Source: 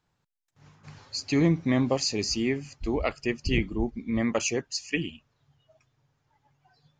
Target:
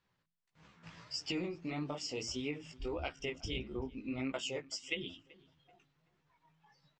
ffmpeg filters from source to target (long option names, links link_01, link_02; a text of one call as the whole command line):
ffmpeg -i in.wav -filter_complex "[0:a]acompressor=threshold=-30dB:ratio=12,lowpass=2900,bandreject=frequency=50:width_type=h:width=6,bandreject=frequency=100:width_type=h:width=6,bandreject=frequency=150:width_type=h:width=6,bandreject=frequency=200:width_type=h:width=6,bandreject=frequency=250:width_type=h:width=6,bandreject=frequency=300:width_type=h:width=6,flanger=delay=15.5:depth=5.6:speed=1.6,highshelf=frequency=2300:gain=11,asplit=2[link_01][link_02];[link_02]adelay=381,lowpass=frequency=2000:poles=1,volume=-21dB,asplit=2[link_03][link_04];[link_04]adelay=381,lowpass=frequency=2000:poles=1,volume=0.37,asplit=2[link_05][link_06];[link_06]adelay=381,lowpass=frequency=2000:poles=1,volume=0.37[link_07];[link_01][link_03][link_05][link_07]amix=inputs=4:normalize=0,asetrate=49501,aresample=44100,atempo=0.890899,volume=-2dB" out.wav